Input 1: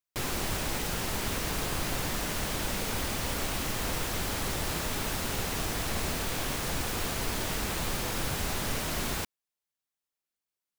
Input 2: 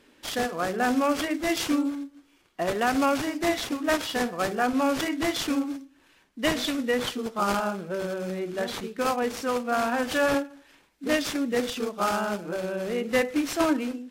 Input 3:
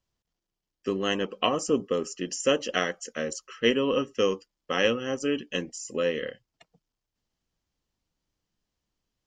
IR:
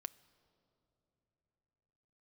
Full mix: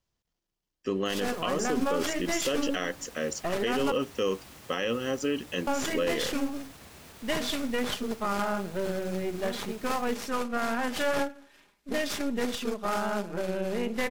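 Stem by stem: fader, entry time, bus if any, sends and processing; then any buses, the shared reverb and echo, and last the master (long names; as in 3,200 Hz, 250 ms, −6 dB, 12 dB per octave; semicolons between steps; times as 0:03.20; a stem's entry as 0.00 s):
−15.0 dB, 0.90 s, no send, high-pass filter 58 Hz; brickwall limiter −24.5 dBFS, peak gain reduction 5 dB
0.0 dB, 0.85 s, muted 0:03.92–0:05.67, no send, gain on one half-wave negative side −7 dB; comb filter 4.9 ms, depth 35%
+0.5 dB, 0.00 s, no send, no processing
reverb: not used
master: brickwall limiter −18 dBFS, peak gain reduction 10.5 dB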